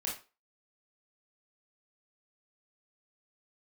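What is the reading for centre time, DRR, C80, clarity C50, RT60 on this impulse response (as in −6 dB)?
31 ms, −4.0 dB, 13.0 dB, 6.0 dB, 0.30 s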